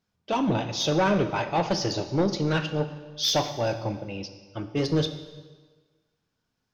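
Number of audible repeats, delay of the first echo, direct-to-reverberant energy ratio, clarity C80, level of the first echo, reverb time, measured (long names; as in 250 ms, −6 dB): no echo audible, no echo audible, 9.0 dB, 12.0 dB, no echo audible, 1.4 s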